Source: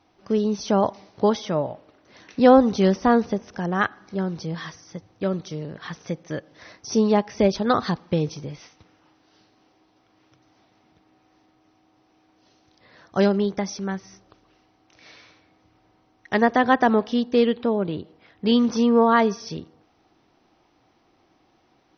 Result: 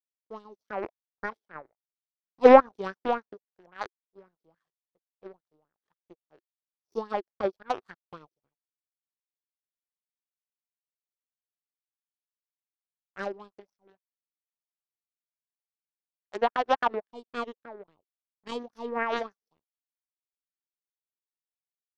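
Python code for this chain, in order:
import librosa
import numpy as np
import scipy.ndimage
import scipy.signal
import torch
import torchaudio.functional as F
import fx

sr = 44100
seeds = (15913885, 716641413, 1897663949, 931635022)

y = fx.power_curve(x, sr, exponent=3.0)
y = fx.bell_lfo(y, sr, hz=3.6, low_hz=350.0, high_hz=1700.0, db=16)
y = y * librosa.db_to_amplitude(-3.5)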